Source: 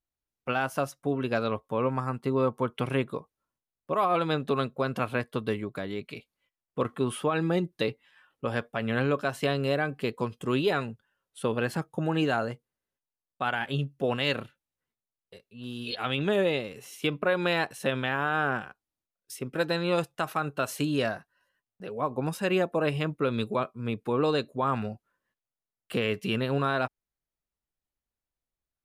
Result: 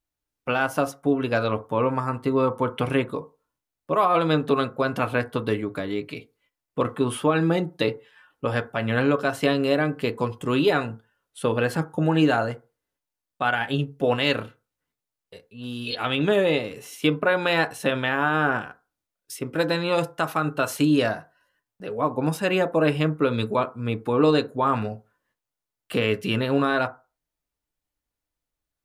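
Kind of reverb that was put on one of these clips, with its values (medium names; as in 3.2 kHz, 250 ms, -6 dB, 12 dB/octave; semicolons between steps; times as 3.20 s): FDN reverb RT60 0.3 s, low-frequency decay 0.85×, high-frequency decay 0.35×, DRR 8 dB; trim +4.5 dB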